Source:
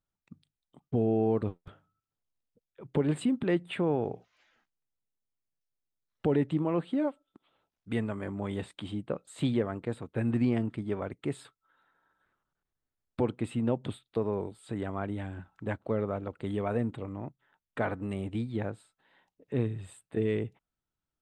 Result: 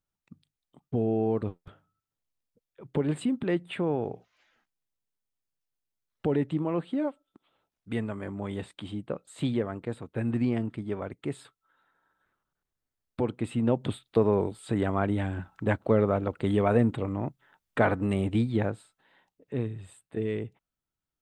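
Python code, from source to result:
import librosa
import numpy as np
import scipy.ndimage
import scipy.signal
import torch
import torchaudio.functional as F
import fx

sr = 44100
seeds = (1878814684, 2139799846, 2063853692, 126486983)

y = fx.gain(x, sr, db=fx.line((13.21, 0.0), (14.2, 7.5), (18.42, 7.5), (19.62, -1.5)))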